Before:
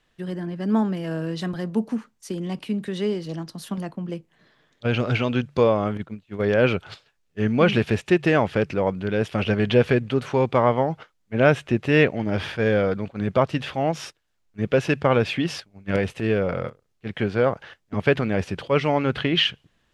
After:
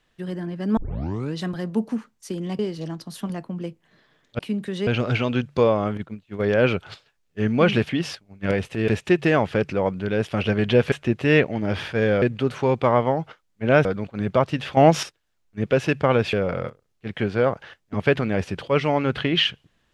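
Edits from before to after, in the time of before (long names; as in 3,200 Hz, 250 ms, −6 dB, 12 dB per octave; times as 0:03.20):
0:00.77: tape start 0.57 s
0:02.59–0:03.07: move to 0:04.87
0:11.56–0:12.86: move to 0:09.93
0:13.78–0:14.04: clip gain +9 dB
0:15.34–0:16.33: move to 0:07.89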